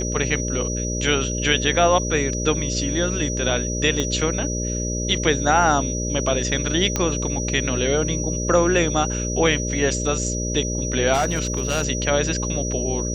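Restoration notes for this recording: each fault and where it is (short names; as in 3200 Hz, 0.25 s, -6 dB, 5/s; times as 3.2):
buzz 60 Hz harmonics 10 -26 dBFS
tone 5800 Hz -28 dBFS
4 pop -10 dBFS
6.96 pop -7 dBFS
11.13–11.84 clipped -16.5 dBFS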